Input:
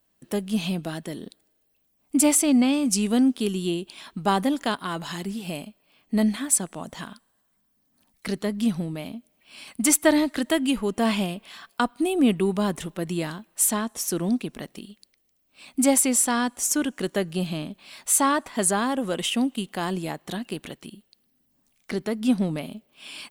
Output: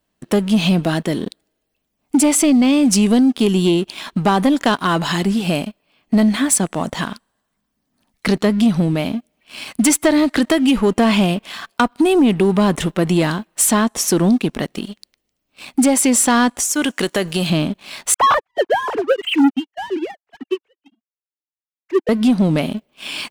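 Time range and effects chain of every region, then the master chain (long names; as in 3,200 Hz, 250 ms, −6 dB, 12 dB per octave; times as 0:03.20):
0:16.60–0:17.50: spectral tilt +2 dB per octave + downward compressor 4 to 1, threshold −27 dBFS
0:18.14–0:22.09: three sine waves on the formant tracks + leveller curve on the samples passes 2 + expander for the loud parts 2.5 to 1, over −35 dBFS
whole clip: high-shelf EQ 9,100 Hz −11.5 dB; downward compressor, threshold −23 dBFS; leveller curve on the samples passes 2; level +6.5 dB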